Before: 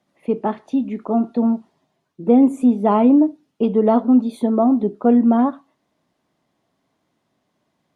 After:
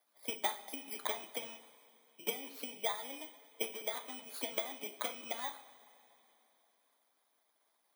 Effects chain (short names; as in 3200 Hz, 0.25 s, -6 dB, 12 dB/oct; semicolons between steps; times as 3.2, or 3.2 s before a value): FFT order left unsorted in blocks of 16 samples; HPF 820 Hz 12 dB/oct; compressor 10:1, threshold -31 dBFS, peak gain reduction 16.5 dB; harmonic-percussive split harmonic -15 dB; two-slope reverb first 0.39 s, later 3.3 s, from -18 dB, DRR 5.5 dB; gain +1.5 dB